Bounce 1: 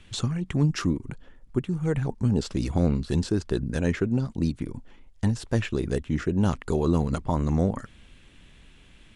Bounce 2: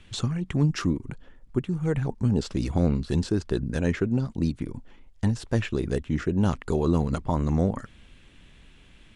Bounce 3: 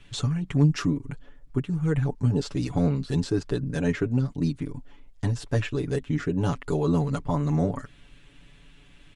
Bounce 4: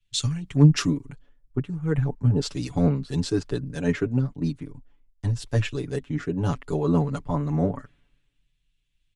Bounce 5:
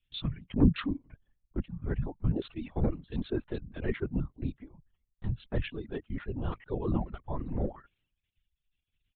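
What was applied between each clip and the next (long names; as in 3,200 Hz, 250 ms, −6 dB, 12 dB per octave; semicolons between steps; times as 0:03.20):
high-shelf EQ 8,500 Hz −4.5 dB
comb filter 7 ms, depth 88%; level −2.5 dB
multiband upward and downward expander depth 100%
linear-prediction vocoder at 8 kHz whisper; reverb reduction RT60 0.79 s; level −7 dB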